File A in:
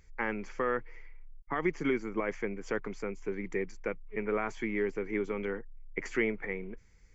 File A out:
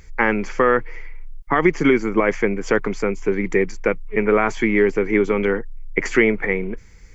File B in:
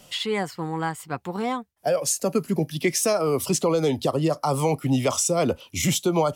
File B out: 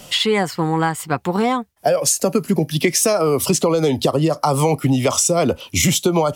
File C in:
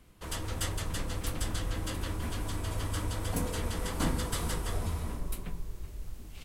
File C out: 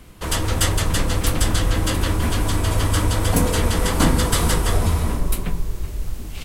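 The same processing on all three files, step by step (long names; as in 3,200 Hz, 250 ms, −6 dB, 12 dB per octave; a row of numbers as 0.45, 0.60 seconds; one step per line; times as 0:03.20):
downward compressor, threshold −24 dBFS
normalise the peak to −3 dBFS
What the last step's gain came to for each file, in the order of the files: +15.5, +11.0, +14.5 decibels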